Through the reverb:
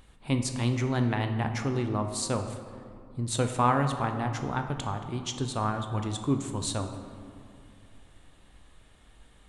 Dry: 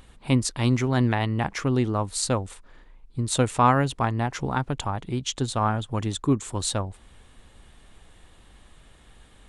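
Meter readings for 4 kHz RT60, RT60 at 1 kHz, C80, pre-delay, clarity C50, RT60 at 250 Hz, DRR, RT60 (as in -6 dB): 1.2 s, 2.3 s, 9.0 dB, 18 ms, 7.5 dB, 2.9 s, 6.0 dB, 2.4 s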